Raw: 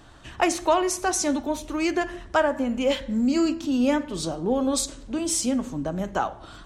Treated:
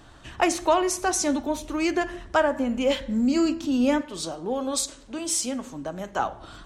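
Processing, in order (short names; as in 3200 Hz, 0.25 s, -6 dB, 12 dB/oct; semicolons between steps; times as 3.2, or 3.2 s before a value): 4.01–6.19 low shelf 340 Hz -10.5 dB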